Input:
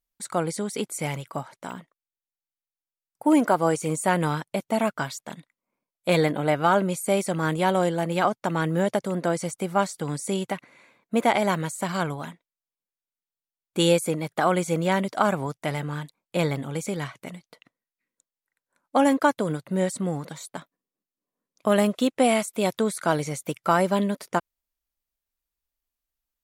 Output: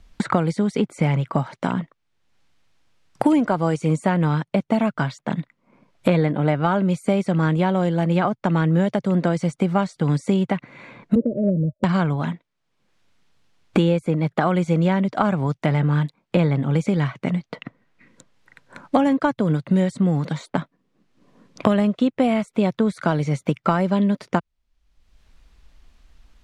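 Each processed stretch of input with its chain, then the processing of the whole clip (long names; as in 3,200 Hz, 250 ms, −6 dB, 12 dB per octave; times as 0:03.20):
0:11.15–0:11.84: Chebyshev low-pass filter 620 Hz, order 10 + multiband upward and downward expander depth 100%
whole clip: low-pass filter 5,300 Hz 12 dB per octave; bass and treble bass +10 dB, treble −4 dB; multiband upward and downward compressor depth 100%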